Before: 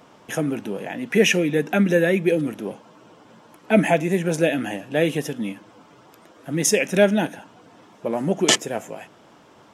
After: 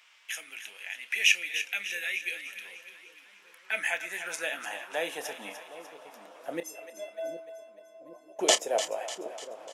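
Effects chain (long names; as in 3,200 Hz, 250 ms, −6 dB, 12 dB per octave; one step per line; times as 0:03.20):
dynamic equaliser 1,500 Hz, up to −6 dB, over −34 dBFS, Q 0.82
0:06.60–0:08.39: stiff-string resonator 310 Hz, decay 0.66 s, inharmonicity 0.03
high-pass filter sweep 2,300 Hz → 590 Hz, 0:03.18–0:05.93
double-tracking delay 29 ms −13 dB
echo with a time of its own for lows and highs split 550 Hz, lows 765 ms, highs 298 ms, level −10.5 dB
level −4.5 dB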